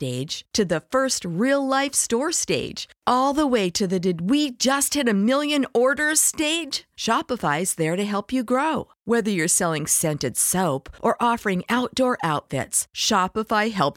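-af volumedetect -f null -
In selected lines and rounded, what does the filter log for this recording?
mean_volume: -22.4 dB
max_volume: -4.8 dB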